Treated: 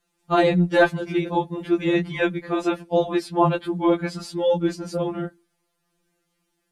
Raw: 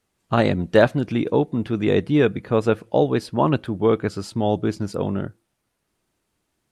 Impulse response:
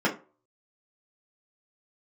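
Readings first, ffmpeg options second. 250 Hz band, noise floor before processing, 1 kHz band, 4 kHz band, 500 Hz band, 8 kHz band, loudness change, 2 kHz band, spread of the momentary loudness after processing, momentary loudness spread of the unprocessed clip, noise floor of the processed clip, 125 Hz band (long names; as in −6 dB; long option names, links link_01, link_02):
−1.0 dB, −75 dBFS, +1.5 dB, +0.5 dB, −2.0 dB, can't be measured, −1.5 dB, +2.0 dB, 9 LU, 8 LU, −75 dBFS, −4.0 dB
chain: -af "afftfilt=real='re*2.83*eq(mod(b,8),0)':imag='im*2.83*eq(mod(b,8),0)':win_size=2048:overlap=0.75,volume=3dB"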